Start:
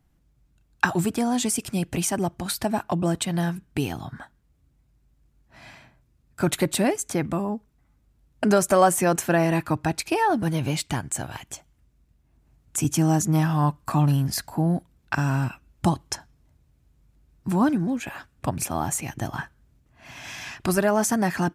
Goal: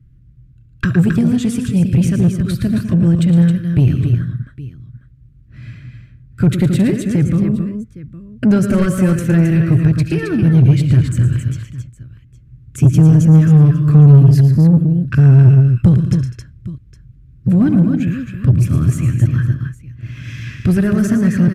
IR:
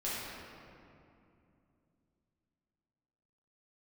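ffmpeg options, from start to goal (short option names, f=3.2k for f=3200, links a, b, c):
-filter_complex "[0:a]equalizer=f=120:t=o:w=0.41:g=11,aecho=1:1:69|112|143|202|268|812:0.106|0.335|0.126|0.133|0.447|0.1,aeval=exprs='clip(val(0),-1,0.211)':c=same,asuperstop=centerf=810:order=4:qfactor=1,bass=f=250:g=14,treble=f=4k:g=-10,asplit=2[a][b];[b]acontrast=73,volume=2dB[c];[a][c]amix=inputs=2:normalize=0,volume=-9dB"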